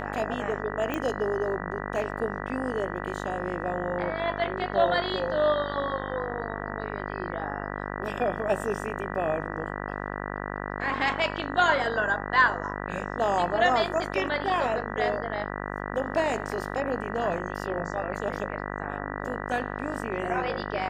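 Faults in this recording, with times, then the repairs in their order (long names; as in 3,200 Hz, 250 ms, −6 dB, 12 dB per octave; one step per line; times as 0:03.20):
mains buzz 50 Hz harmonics 39 −34 dBFS
0:00.94: click −16 dBFS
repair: click removal
hum removal 50 Hz, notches 39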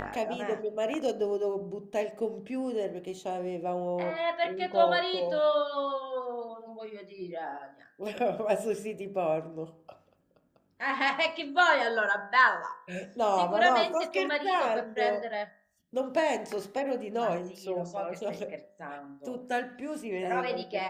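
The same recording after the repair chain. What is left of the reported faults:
none of them is left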